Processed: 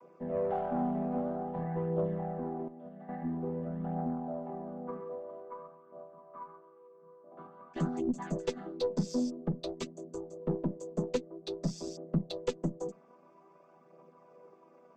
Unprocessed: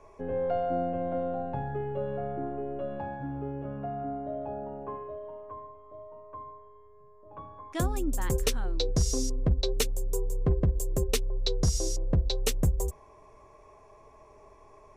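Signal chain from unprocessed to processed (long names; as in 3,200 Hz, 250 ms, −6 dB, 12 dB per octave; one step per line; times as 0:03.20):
channel vocoder with a chord as carrier minor triad, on E3
0:02.68–0:03.09: noise gate −34 dBFS, range −11 dB
tube saturation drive 22 dB, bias 0.4
phase shifter 0.5 Hz, delay 4.7 ms, feedback 37%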